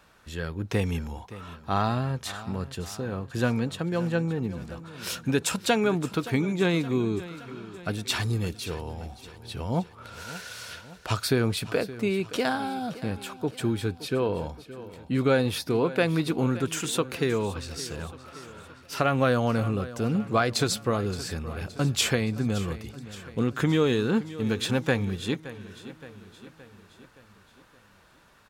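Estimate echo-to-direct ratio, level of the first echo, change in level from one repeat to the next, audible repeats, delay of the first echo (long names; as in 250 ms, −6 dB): −14.5 dB, −16.0 dB, −5.0 dB, 4, 570 ms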